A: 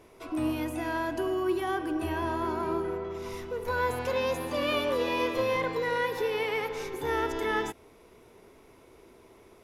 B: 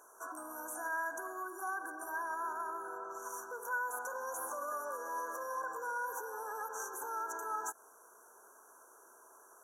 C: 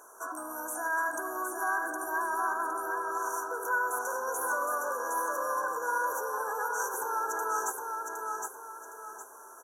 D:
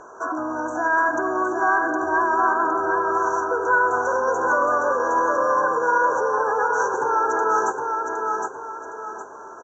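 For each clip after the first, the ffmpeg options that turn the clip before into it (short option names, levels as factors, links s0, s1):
-af "afftfilt=real='re*(1-between(b*sr/4096,1700,5700))':imag='im*(1-between(b*sr/4096,1700,5700))':win_size=4096:overlap=0.75,alimiter=level_in=1.78:limit=0.0631:level=0:latency=1:release=111,volume=0.562,highpass=1300,volume=2.37"
-af "aecho=1:1:763|1526|2289|3052:0.631|0.221|0.0773|0.0271,volume=2.11"
-af "acontrast=75,aresample=16000,aresample=44100,aemphasis=mode=reproduction:type=riaa,volume=1.68"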